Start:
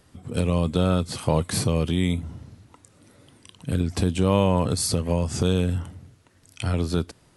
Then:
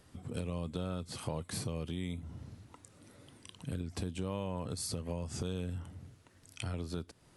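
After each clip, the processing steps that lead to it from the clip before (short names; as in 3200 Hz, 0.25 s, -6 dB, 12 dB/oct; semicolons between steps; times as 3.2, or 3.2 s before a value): compressor 2.5:1, threshold -36 dBFS, peak gain reduction 14.5 dB; gain -4 dB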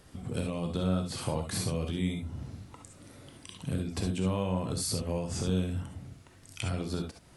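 non-linear reverb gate 90 ms rising, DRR 3 dB; gain +4.5 dB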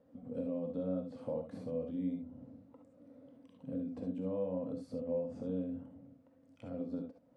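double band-pass 370 Hz, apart 0.93 oct; gain +2 dB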